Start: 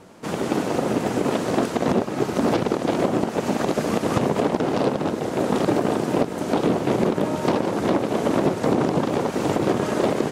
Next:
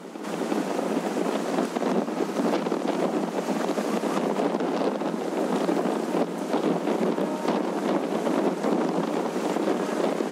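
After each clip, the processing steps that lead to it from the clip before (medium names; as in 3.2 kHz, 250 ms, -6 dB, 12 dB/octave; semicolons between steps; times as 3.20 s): Chebyshev high-pass 170 Hz, order 8; on a send: reverse echo 365 ms -10.5 dB; on the sum: trim -3.5 dB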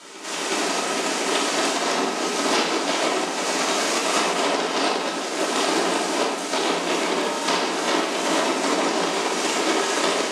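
frequency weighting ITU-R 468; simulated room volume 650 m³, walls mixed, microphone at 2.8 m; upward expansion 1.5:1, over -32 dBFS; trim +1.5 dB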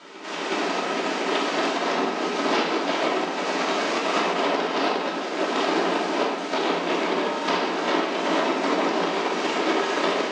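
distance through air 170 m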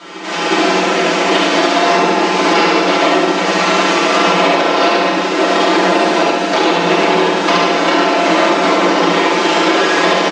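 comb 5.9 ms, depth 92%; on a send: flutter echo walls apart 11.9 m, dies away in 0.9 s; on the sum: loudness maximiser +9.5 dB; trim -1 dB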